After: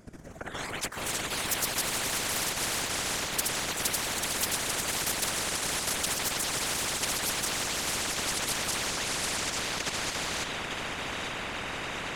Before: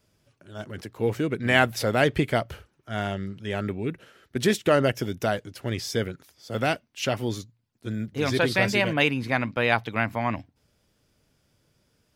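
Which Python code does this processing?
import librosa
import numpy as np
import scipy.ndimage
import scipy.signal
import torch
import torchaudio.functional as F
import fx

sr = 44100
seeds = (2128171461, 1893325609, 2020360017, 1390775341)

p1 = fx.echo_diffused(x, sr, ms=673, feedback_pct=59, wet_db=-6.0)
p2 = fx.quant_float(p1, sr, bits=2)
p3 = p1 + F.gain(torch.from_numpy(p2), -12.0).numpy()
p4 = fx.level_steps(p3, sr, step_db=13)
p5 = scipy.signal.sosfilt(scipy.signal.butter(2, 7700.0, 'lowpass', fs=sr, output='sos'), p4)
p6 = fx.low_shelf(p5, sr, hz=490.0, db=5.0)
p7 = fx.echo_pitch(p6, sr, ms=128, semitones=3, count=2, db_per_echo=-3.0)
p8 = fx.band_shelf(p7, sr, hz=3700.0, db=-9.5, octaves=1.3)
p9 = p8 + 10.0 ** (-12.0 / 20.0) * np.pad(p8, (int(842 * sr / 1000.0), 0))[:len(p8)]
p10 = fx.whisperise(p9, sr, seeds[0])
p11 = fx.spectral_comp(p10, sr, ratio=10.0)
y = F.gain(torch.from_numpy(p11), -5.0).numpy()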